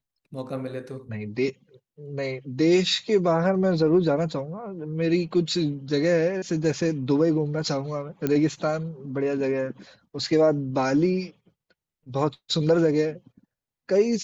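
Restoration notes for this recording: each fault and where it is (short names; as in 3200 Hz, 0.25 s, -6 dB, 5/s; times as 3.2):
8.27 pop -12 dBFS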